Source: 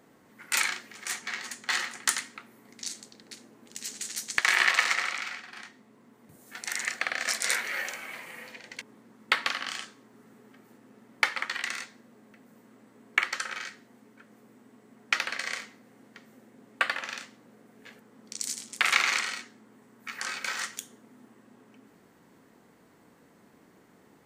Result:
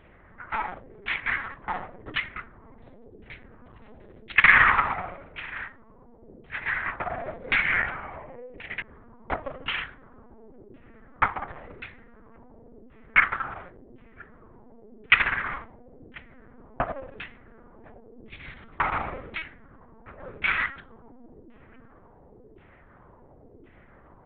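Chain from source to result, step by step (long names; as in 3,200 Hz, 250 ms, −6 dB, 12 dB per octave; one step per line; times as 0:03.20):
dynamic equaliser 1,800 Hz, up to −3 dB, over −42 dBFS, Q 7.3
auto-filter low-pass saw down 0.93 Hz 380–2,800 Hz
linear-prediction vocoder at 8 kHz pitch kept
level +4.5 dB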